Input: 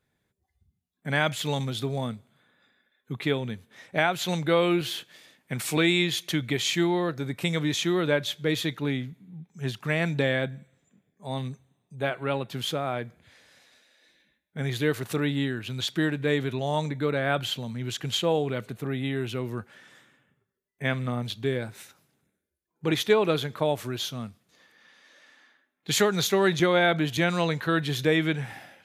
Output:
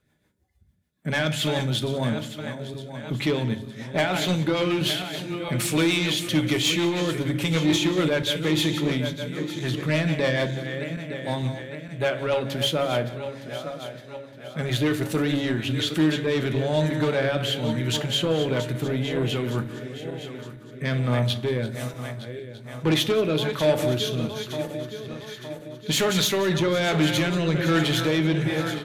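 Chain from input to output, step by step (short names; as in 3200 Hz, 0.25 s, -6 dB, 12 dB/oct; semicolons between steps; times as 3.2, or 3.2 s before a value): regenerating reverse delay 0.457 s, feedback 69%, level -12 dB; dynamic EQ 2900 Hz, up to +4 dB, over -41 dBFS, Q 2.4; in parallel at +2.5 dB: limiter -17.5 dBFS, peak gain reduction 10 dB; on the sum: rotary speaker horn 6.7 Hz, later 1.2 Hz, at 15.74; soft clip -17 dBFS, distortion -14 dB; echo 0.181 s -18 dB; on a send at -8 dB: reverb RT60 0.40 s, pre-delay 3 ms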